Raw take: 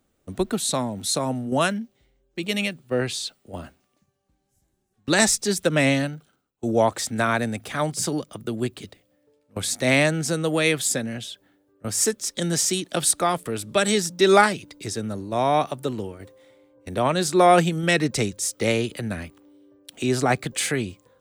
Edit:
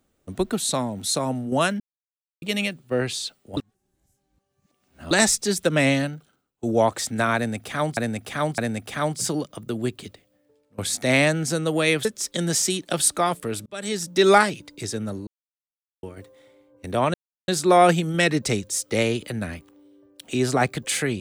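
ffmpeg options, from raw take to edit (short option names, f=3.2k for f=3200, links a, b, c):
-filter_complex "[0:a]asplit=12[a][b][c][d][e][f][g][h][i][j][k][l];[a]atrim=end=1.8,asetpts=PTS-STARTPTS,afade=t=out:st=1.796:d=0.004:c=hsin[m];[b]atrim=start=1.8:end=2.42,asetpts=PTS-STARTPTS,volume=0[n];[c]atrim=start=2.42:end=3.572,asetpts=PTS-STARTPTS,afade=t=in:d=0.004:c=hsin[o];[d]atrim=start=3.568:end=5.112,asetpts=PTS-STARTPTS,areverse[p];[e]atrim=start=5.108:end=7.972[q];[f]atrim=start=7.358:end=7.972[r];[g]atrim=start=7.358:end=10.832[s];[h]atrim=start=12.078:end=13.69,asetpts=PTS-STARTPTS,afade=t=out:st=1.608:d=0.004:c=hsin[t];[i]atrim=start=13.69:end=15.3,asetpts=PTS-STARTPTS,afade=t=in:d=0.51,afade=t=out:st=1.606:d=0.004:c=hsin[u];[j]atrim=start=15.3:end=16.06,asetpts=PTS-STARTPTS,volume=0[v];[k]atrim=start=16.06:end=17.17,asetpts=PTS-STARTPTS,afade=t=in:d=0.004:c=hsin,afade=t=out:st=1.106:d=0.004:c=hsin,apad=pad_dur=0.34[w];[l]atrim=start=17.17,asetpts=PTS-STARTPTS,afade=t=in:d=0.004:c=hsin[x];[m][n][o]concat=n=3:v=0:a=1[y];[y][p]acrossfade=d=0.004:c1=hsin:c2=hsin[z];[z][q]acrossfade=d=0.004:c1=hsin:c2=hsin[aa];[aa][r]acrossfade=d=0.004:c1=hsin:c2=hsin[ab];[ab][s]acrossfade=d=0.004:c1=hsin:c2=hsin[ac];[t][u][v][w][x]concat=n=5:v=0:a=1[ad];[ac][ad]acrossfade=d=0.004:c1=hsin:c2=hsin"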